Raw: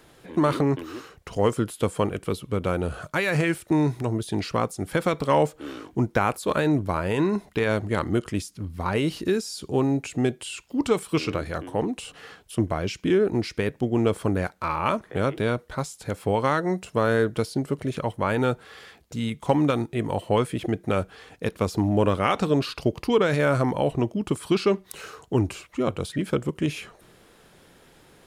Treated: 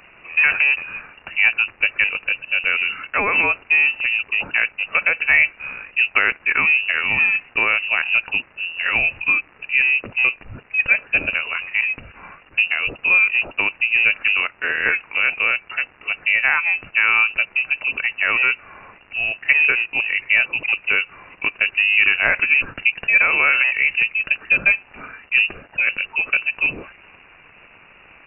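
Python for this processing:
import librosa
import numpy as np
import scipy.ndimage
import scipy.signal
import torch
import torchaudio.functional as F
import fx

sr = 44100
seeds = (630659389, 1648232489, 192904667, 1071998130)

y = fx.dmg_crackle(x, sr, seeds[0], per_s=490.0, level_db=-36.0)
y = fx.freq_invert(y, sr, carrier_hz=2800)
y = F.gain(torch.from_numpy(y), 5.0).numpy()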